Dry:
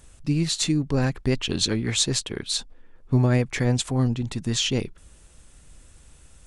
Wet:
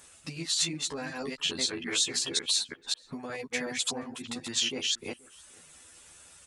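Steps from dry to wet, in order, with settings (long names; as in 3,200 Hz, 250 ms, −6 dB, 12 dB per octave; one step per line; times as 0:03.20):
delay that plays each chunk backwards 183 ms, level −2.5 dB
reverb reduction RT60 0.61 s
downward compressor, threshold −28 dBFS, peak gain reduction 14 dB
high-pass filter 870 Hz 6 dB per octave
double-tracking delay 12 ms −2.5 dB
slap from a distant wall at 82 metres, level −24 dB
level +2.5 dB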